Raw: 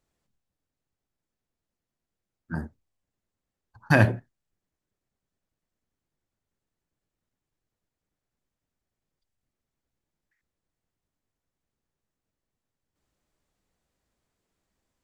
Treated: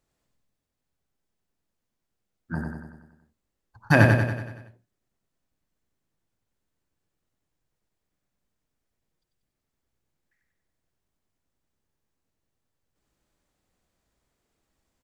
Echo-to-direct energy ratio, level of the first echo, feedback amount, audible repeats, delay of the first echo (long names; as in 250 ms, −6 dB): −2.5 dB, −4.0 dB, 55%, 6, 94 ms